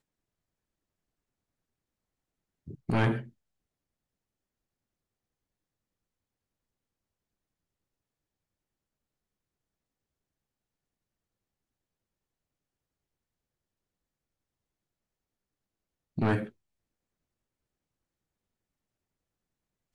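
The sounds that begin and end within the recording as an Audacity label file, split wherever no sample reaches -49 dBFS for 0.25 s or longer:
2.670000	3.290000	sound
16.180000	16.500000	sound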